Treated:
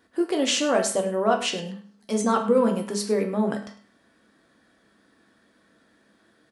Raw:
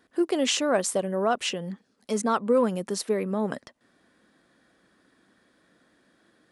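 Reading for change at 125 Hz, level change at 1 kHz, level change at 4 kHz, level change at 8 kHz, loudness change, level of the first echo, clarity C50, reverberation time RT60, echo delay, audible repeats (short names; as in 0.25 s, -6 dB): +2.0 dB, +2.5 dB, +2.0 dB, +1.5 dB, +2.0 dB, -15.0 dB, 9.0 dB, 0.45 s, 0.103 s, 2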